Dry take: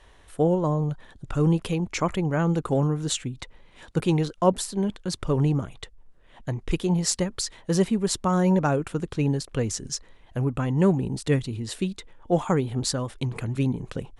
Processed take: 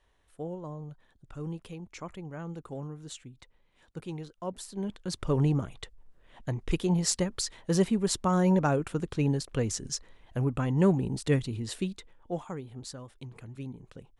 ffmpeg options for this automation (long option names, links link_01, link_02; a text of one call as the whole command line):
ffmpeg -i in.wav -af "volume=-3dB,afade=type=in:start_time=4.49:duration=0.85:silence=0.223872,afade=type=out:start_time=11.65:duration=0.84:silence=0.237137" out.wav